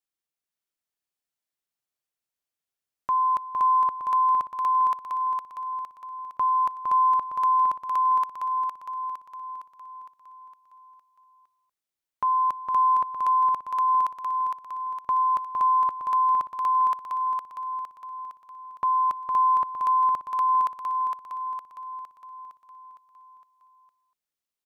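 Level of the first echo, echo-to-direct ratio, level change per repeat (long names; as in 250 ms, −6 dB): −4.5 dB, −3.0 dB, −5.5 dB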